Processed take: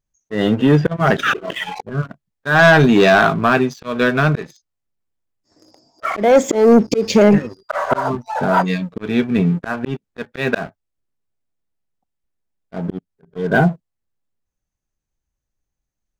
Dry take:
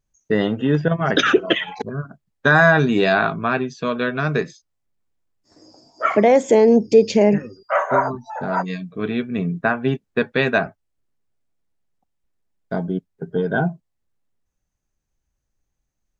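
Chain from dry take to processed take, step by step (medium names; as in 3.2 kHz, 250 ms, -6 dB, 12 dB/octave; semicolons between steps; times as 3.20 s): slow attack 209 ms; waveshaping leveller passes 2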